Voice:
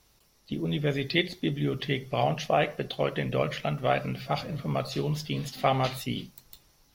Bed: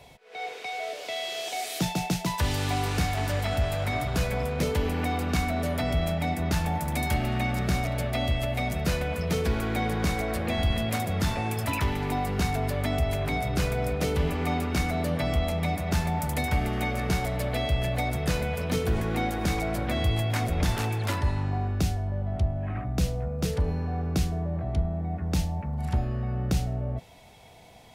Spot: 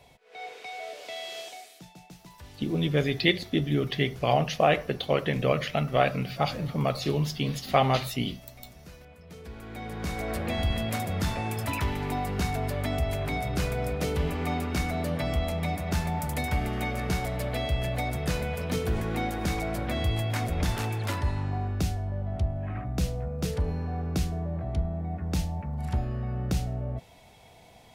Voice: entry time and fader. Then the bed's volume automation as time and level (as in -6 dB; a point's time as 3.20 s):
2.10 s, +2.5 dB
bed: 1.40 s -5 dB
1.81 s -21.5 dB
9.22 s -21.5 dB
10.31 s -2 dB